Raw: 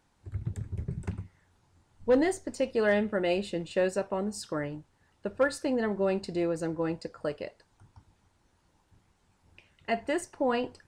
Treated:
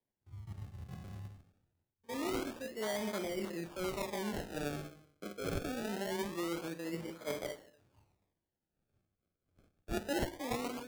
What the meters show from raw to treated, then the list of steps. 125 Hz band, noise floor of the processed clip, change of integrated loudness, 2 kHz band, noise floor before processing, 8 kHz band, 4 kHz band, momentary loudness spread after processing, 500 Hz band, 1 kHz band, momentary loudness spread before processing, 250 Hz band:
-7.5 dB, under -85 dBFS, -9.0 dB, -8.5 dB, -70 dBFS, -3.0 dB, -2.5 dB, 12 LU, -11.0 dB, -6.5 dB, 14 LU, -8.0 dB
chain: stepped spectrum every 50 ms; high shelf 7900 Hz +6.5 dB; on a send: analogue delay 0.234 s, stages 2048, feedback 31%, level -23 dB; on the sum: non-linear reverb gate 0.28 s falling, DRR 6 dB; limiter -21.5 dBFS, peak gain reduction 7 dB; rotary speaker horn 1.2 Hz, later 7 Hz, at 8.78; reverse; compressor 4:1, threshold -42 dBFS, peak gain reduction 13 dB; reverse; HPF 270 Hz 6 dB/oct; bell 510 Hz -6 dB 0.26 oct; decimation with a swept rate 32×, swing 100% 0.24 Hz; three-band expander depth 70%; gain +8 dB

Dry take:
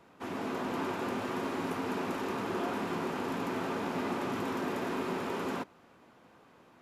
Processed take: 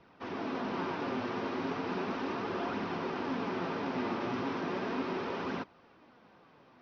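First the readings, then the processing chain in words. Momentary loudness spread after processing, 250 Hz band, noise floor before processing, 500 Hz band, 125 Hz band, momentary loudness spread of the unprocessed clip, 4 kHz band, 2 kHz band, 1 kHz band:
3 LU, -0.5 dB, -60 dBFS, -1.0 dB, -1.0 dB, 2 LU, -1.0 dB, -0.5 dB, -1.0 dB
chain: steep low-pass 5800 Hz 72 dB/oct; flange 0.36 Hz, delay 0.3 ms, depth 8.9 ms, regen +64%; gain +3.5 dB

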